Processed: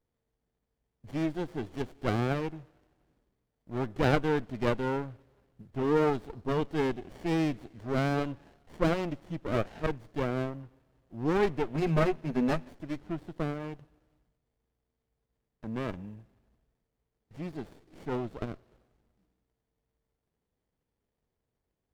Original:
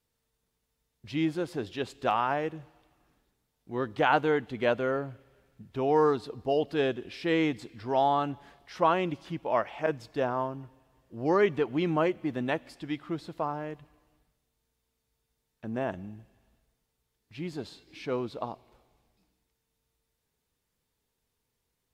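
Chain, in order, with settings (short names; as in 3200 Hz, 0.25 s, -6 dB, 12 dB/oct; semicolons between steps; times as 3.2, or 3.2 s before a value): 11.74–12.74 ripple EQ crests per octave 1.5, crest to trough 17 dB; running maximum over 33 samples; gain -1 dB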